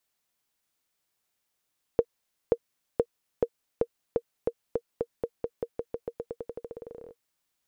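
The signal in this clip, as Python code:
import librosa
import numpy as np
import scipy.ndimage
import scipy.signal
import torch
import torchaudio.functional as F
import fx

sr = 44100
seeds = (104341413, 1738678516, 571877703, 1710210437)

y = fx.bouncing_ball(sr, first_gap_s=0.53, ratio=0.9, hz=469.0, decay_ms=59.0, level_db=-9.5)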